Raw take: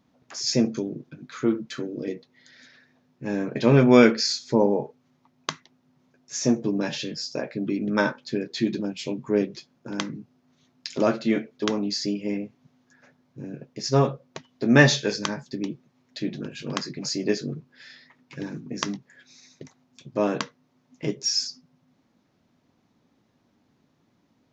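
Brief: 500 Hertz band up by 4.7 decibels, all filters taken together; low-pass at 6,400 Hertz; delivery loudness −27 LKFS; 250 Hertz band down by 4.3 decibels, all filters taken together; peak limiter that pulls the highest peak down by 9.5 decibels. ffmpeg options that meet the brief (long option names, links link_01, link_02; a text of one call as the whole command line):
ffmpeg -i in.wav -af "lowpass=6400,equalizer=frequency=250:width_type=o:gain=-8,equalizer=frequency=500:width_type=o:gain=8,alimiter=limit=-11.5dB:level=0:latency=1" out.wav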